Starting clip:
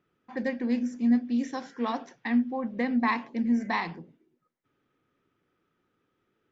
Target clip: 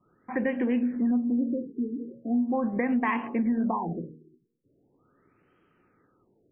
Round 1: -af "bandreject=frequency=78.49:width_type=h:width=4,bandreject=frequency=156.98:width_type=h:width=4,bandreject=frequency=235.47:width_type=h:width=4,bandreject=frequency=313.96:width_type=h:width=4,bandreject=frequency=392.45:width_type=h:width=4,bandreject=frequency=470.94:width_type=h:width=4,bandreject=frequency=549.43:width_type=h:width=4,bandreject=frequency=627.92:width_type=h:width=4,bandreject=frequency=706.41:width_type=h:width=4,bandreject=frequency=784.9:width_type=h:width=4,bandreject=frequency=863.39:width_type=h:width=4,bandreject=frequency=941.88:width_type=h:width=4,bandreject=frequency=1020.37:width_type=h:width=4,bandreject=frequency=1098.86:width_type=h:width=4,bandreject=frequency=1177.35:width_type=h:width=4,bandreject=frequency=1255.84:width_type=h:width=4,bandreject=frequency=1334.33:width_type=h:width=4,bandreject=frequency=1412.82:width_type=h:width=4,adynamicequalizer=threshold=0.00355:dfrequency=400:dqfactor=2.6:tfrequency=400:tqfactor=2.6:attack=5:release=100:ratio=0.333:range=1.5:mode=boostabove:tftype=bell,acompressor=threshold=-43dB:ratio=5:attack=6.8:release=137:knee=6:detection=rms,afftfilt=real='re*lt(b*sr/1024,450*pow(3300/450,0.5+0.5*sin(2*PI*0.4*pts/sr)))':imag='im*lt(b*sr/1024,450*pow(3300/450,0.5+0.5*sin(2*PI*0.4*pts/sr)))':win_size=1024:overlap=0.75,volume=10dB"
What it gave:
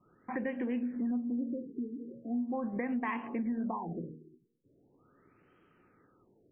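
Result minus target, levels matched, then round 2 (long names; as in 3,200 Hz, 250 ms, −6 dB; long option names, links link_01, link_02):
downward compressor: peak gain reduction +8 dB
-af "bandreject=frequency=78.49:width_type=h:width=4,bandreject=frequency=156.98:width_type=h:width=4,bandreject=frequency=235.47:width_type=h:width=4,bandreject=frequency=313.96:width_type=h:width=4,bandreject=frequency=392.45:width_type=h:width=4,bandreject=frequency=470.94:width_type=h:width=4,bandreject=frequency=549.43:width_type=h:width=4,bandreject=frequency=627.92:width_type=h:width=4,bandreject=frequency=706.41:width_type=h:width=4,bandreject=frequency=784.9:width_type=h:width=4,bandreject=frequency=863.39:width_type=h:width=4,bandreject=frequency=941.88:width_type=h:width=4,bandreject=frequency=1020.37:width_type=h:width=4,bandreject=frequency=1098.86:width_type=h:width=4,bandreject=frequency=1177.35:width_type=h:width=4,bandreject=frequency=1255.84:width_type=h:width=4,bandreject=frequency=1334.33:width_type=h:width=4,bandreject=frequency=1412.82:width_type=h:width=4,adynamicequalizer=threshold=0.00355:dfrequency=400:dqfactor=2.6:tfrequency=400:tqfactor=2.6:attack=5:release=100:ratio=0.333:range=1.5:mode=boostabove:tftype=bell,acompressor=threshold=-33dB:ratio=5:attack=6.8:release=137:knee=6:detection=rms,afftfilt=real='re*lt(b*sr/1024,450*pow(3300/450,0.5+0.5*sin(2*PI*0.4*pts/sr)))':imag='im*lt(b*sr/1024,450*pow(3300/450,0.5+0.5*sin(2*PI*0.4*pts/sr)))':win_size=1024:overlap=0.75,volume=10dB"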